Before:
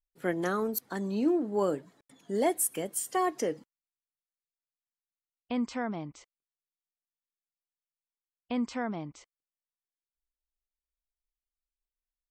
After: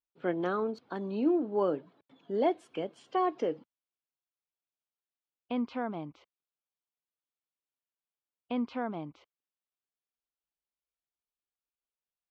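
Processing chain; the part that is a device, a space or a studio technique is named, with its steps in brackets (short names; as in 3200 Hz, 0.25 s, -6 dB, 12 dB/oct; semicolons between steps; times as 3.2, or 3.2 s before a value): guitar cabinet (speaker cabinet 100–3500 Hz, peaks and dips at 130 Hz -4 dB, 200 Hz -4 dB, 1900 Hz -10 dB)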